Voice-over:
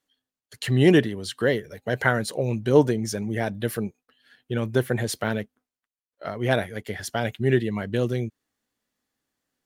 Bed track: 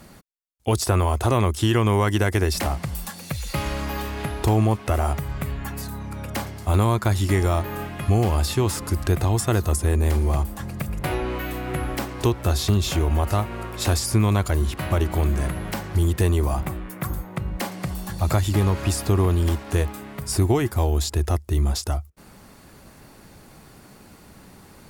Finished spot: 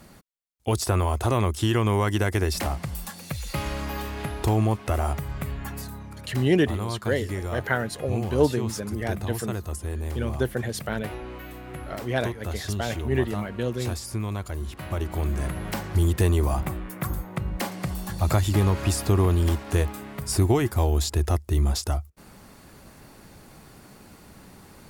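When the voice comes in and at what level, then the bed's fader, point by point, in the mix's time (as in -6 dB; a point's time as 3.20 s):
5.65 s, -3.5 dB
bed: 5.78 s -3 dB
6.31 s -10.5 dB
14.55 s -10.5 dB
15.78 s -1 dB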